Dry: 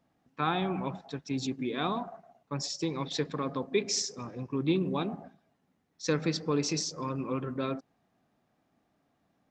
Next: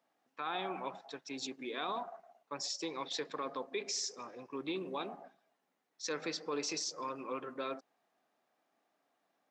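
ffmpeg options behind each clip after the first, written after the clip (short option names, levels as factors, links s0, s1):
-af "highpass=470,alimiter=level_in=1.26:limit=0.0631:level=0:latency=1:release=26,volume=0.794,volume=0.794"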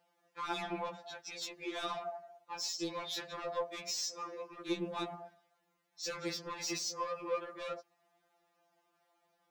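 -af "asoftclip=type=tanh:threshold=0.0158,afftfilt=real='re*2.83*eq(mod(b,8),0)':imag='im*2.83*eq(mod(b,8),0)':win_size=2048:overlap=0.75,volume=2"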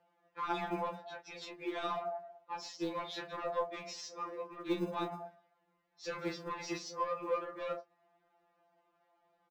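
-filter_complex "[0:a]acrossover=split=180[s0][s1];[s0]acrusher=samples=35:mix=1:aa=0.000001[s2];[s1]adynamicsmooth=sensitivity=1.5:basefreq=2800[s3];[s2][s3]amix=inputs=2:normalize=0,asplit=2[s4][s5];[s5]adelay=28,volume=0.335[s6];[s4][s6]amix=inputs=2:normalize=0,volume=1.33"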